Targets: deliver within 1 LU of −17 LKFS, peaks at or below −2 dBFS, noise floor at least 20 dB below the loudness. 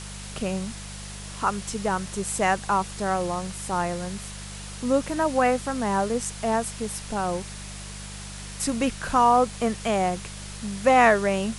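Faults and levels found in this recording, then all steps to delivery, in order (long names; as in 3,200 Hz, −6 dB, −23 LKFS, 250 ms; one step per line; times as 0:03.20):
mains hum 50 Hz; hum harmonics up to 200 Hz; level of the hum −38 dBFS; background noise floor −38 dBFS; target noise floor −45 dBFS; integrated loudness −25.0 LKFS; sample peak −6.0 dBFS; target loudness −17.0 LKFS
→ hum removal 50 Hz, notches 4
broadband denoise 7 dB, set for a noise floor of −38 dBFS
level +8 dB
brickwall limiter −2 dBFS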